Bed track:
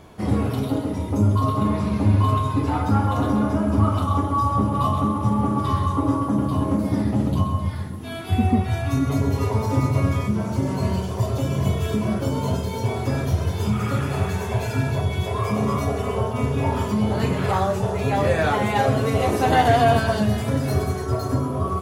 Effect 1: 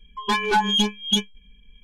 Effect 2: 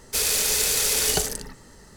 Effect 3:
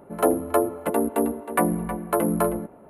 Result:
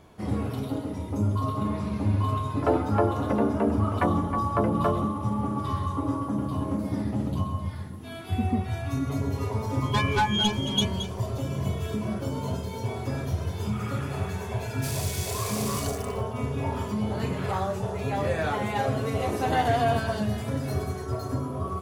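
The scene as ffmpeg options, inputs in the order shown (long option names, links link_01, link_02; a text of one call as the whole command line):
ffmpeg -i bed.wav -i cue0.wav -i cue1.wav -i cue2.wav -filter_complex "[0:a]volume=-7dB[link_01];[3:a]lowpass=2600[link_02];[1:a]aecho=1:1:223:0.299[link_03];[2:a]acrusher=bits=5:mix=0:aa=0.000001[link_04];[link_02]atrim=end=2.89,asetpts=PTS-STARTPTS,volume=-3.5dB,afade=type=in:duration=0.004:curve=hsin,afade=type=out:start_time=2.886:duration=0.004:curve=hsin,adelay=2440[link_05];[link_03]atrim=end=1.83,asetpts=PTS-STARTPTS,volume=-5dB,afade=type=in:duration=0.004:curve=hsin,afade=type=out:start_time=1.826:duration=0.004:curve=hsin,adelay=9650[link_06];[link_04]atrim=end=1.96,asetpts=PTS-STARTPTS,volume=-13.5dB,afade=type=in:duration=0.004:curve=hsin,afade=type=out:start_time=1.956:duration=0.004:curve=hsin,adelay=14690[link_07];[link_01][link_05][link_06][link_07]amix=inputs=4:normalize=0" out.wav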